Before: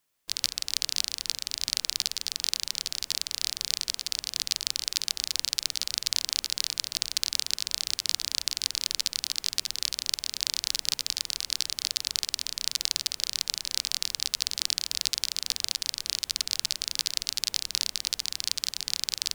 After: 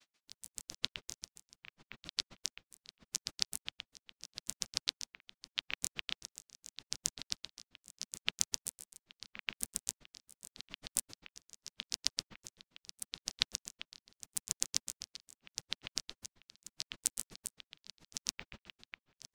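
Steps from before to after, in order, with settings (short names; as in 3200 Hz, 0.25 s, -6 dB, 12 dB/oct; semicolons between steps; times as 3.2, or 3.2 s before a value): tape start at the beginning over 0.45 s; added noise blue -47 dBFS; LPF 6200 Hz 12 dB/oct; grains 76 ms, grains 7.4/s, pitch spread up and down by 12 st; bell 210 Hz +7.5 dB 1.4 oct; dB-linear tremolo 8.2 Hz, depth 24 dB; gain +2 dB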